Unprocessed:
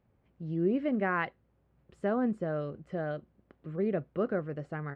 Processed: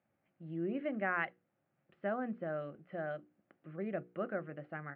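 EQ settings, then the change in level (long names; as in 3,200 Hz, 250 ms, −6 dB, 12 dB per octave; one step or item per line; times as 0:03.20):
loudspeaker in its box 240–2,800 Hz, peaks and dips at 250 Hz −6 dB, 410 Hz −6 dB, 990 Hz −9 dB
parametric band 460 Hz −6.5 dB 0.44 octaves
mains-hum notches 60/120/180/240/300/360/420/480 Hz
−1.0 dB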